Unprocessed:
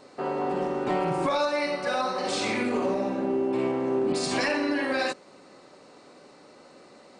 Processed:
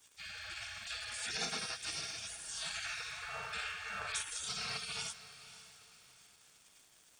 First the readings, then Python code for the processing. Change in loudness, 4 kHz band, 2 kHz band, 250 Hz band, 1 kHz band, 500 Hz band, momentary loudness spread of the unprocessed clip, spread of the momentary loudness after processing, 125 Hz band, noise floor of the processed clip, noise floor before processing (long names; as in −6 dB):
−12.5 dB, −4.0 dB, −9.0 dB, −30.5 dB, −18.0 dB, −28.5 dB, 3 LU, 16 LU, −17.0 dB, −65 dBFS, −53 dBFS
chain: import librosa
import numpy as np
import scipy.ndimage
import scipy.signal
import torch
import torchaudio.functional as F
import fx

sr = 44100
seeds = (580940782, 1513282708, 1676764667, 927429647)

p1 = fx.spec_gate(x, sr, threshold_db=-30, keep='weak')
p2 = fx.notch_comb(p1, sr, f0_hz=1000.0)
p3 = fx.dmg_crackle(p2, sr, seeds[0], per_s=520.0, level_db=-62.0)
p4 = p3 + fx.echo_diffused(p3, sr, ms=546, feedback_pct=42, wet_db=-14.5, dry=0)
y = p4 * librosa.db_to_amplitude(8.5)